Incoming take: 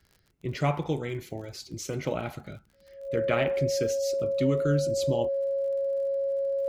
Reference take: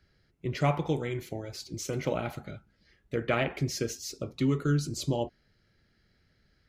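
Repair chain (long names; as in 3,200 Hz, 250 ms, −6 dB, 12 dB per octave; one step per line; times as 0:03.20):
click removal
notch filter 550 Hz, Q 30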